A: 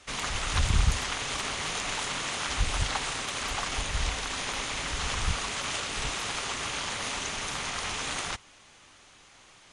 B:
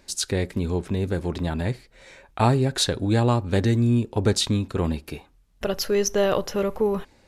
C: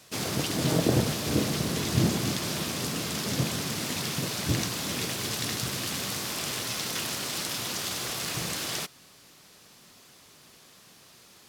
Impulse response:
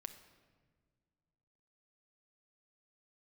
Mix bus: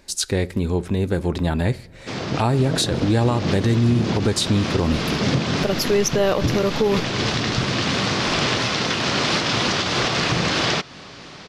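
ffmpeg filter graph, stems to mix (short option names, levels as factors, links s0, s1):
-filter_complex "[0:a]highshelf=f=4600:g=-7.5,asoftclip=type=tanh:threshold=0.0376,tremolo=f=3:d=0.81,adelay=2300,volume=0.501[s0];[1:a]volume=1.19,asplit=3[s1][s2][s3];[s2]volume=0.398[s4];[2:a]highshelf=f=4400:g=-10,dynaudnorm=f=280:g=9:m=2.24,lowpass=f=5800:w=0.5412,lowpass=f=5800:w=1.3066,adelay=1950,volume=1.19[s5];[s3]apad=whole_len=592388[s6];[s5][s6]sidechaincompress=threshold=0.0891:ratio=8:attack=16:release=173[s7];[3:a]atrim=start_sample=2205[s8];[s4][s8]afir=irnorm=-1:irlink=0[s9];[s0][s1][s7][s9]amix=inputs=4:normalize=0,dynaudnorm=f=350:g=9:m=3.76,alimiter=limit=0.316:level=0:latency=1:release=245"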